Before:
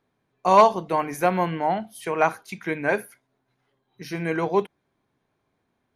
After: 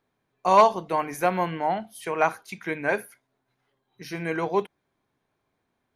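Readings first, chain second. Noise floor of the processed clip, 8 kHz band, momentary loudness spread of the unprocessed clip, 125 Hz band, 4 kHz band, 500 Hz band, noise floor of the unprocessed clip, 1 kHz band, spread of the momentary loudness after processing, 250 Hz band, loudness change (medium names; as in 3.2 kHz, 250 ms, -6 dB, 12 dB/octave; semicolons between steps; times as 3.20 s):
-77 dBFS, -1.0 dB, 14 LU, -4.0 dB, -1.0 dB, -2.0 dB, -75 dBFS, -1.5 dB, 14 LU, -3.5 dB, -2.0 dB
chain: peaking EQ 170 Hz -3 dB 2.9 oct; trim -1 dB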